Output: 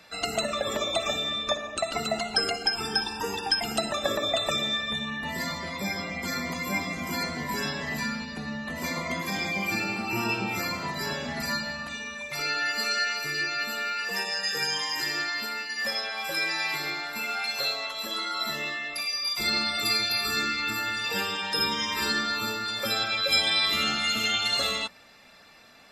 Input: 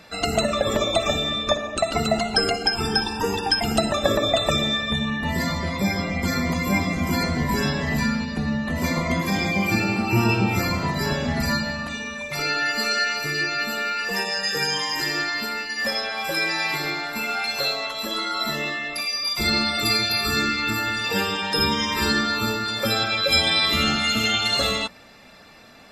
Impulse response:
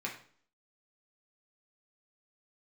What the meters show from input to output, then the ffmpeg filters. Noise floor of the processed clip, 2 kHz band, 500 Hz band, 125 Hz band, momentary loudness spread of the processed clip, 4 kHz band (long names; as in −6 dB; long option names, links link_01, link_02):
−38 dBFS, −4.0 dB, −7.5 dB, −13.5 dB, 7 LU, −3.5 dB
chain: -filter_complex "[0:a]tiltshelf=frequency=640:gain=-3.5,acrossover=split=140[link_01][link_02];[link_01]acompressor=threshold=-41dB:ratio=6[link_03];[link_03][link_02]amix=inputs=2:normalize=0,volume=-7dB"